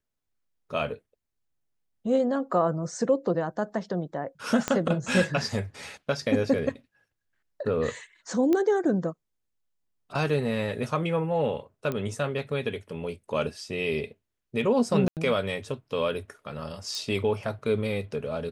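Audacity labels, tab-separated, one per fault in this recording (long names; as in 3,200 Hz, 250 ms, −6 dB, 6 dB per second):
4.680000	4.680000	click −11 dBFS
8.530000	8.530000	click −14 dBFS
11.920000	11.920000	click −18 dBFS
15.080000	15.170000	drop-out 88 ms
16.950000	16.950000	click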